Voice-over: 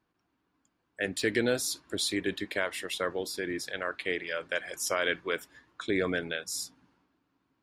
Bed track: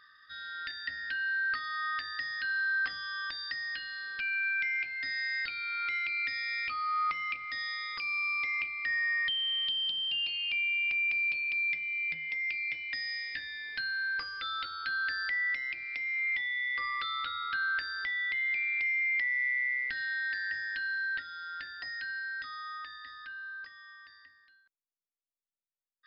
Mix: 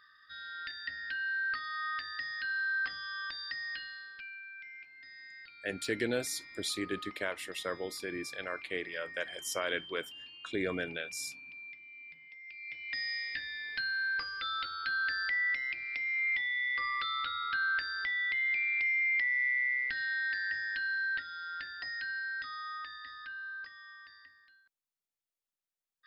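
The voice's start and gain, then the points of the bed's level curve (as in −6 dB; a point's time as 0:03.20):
4.65 s, −5.0 dB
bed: 0:03.81 −2.5 dB
0:04.46 −17 dB
0:12.43 −17 dB
0:12.98 0 dB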